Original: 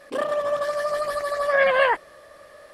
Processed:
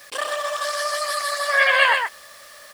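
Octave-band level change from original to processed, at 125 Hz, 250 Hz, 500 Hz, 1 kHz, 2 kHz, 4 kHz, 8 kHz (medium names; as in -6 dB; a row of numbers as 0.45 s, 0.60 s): no reading, under -15 dB, -5.5 dB, +2.5 dB, +6.0 dB, +11.0 dB, +14.0 dB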